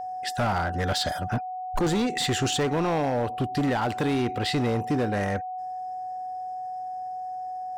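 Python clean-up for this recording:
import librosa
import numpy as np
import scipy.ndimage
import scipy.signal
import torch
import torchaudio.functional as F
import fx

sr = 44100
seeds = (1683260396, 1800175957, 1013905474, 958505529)

y = fx.fix_declip(x, sr, threshold_db=-20.5)
y = fx.notch(y, sr, hz=740.0, q=30.0)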